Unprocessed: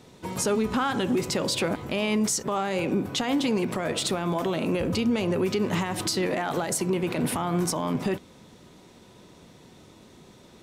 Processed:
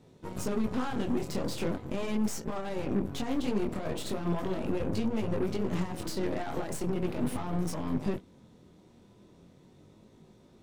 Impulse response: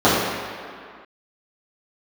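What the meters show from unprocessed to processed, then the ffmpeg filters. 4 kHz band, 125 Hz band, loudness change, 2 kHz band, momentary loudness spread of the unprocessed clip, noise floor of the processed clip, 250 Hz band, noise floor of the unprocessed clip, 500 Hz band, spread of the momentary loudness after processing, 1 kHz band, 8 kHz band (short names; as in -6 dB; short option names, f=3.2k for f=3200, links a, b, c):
-12.5 dB, -4.0 dB, -6.5 dB, -11.0 dB, 3 LU, -59 dBFS, -5.0 dB, -52 dBFS, -7.0 dB, 4 LU, -9.0 dB, -13.5 dB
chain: -af "flanger=delay=18.5:depth=6.9:speed=0.39,aeval=exprs='0.15*(cos(1*acos(clip(val(0)/0.15,-1,1)))-cos(1*PI/2))+0.0211*(cos(8*acos(clip(val(0)/0.15,-1,1)))-cos(8*PI/2))':c=same,tiltshelf=f=710:g=5,volume=-6dB"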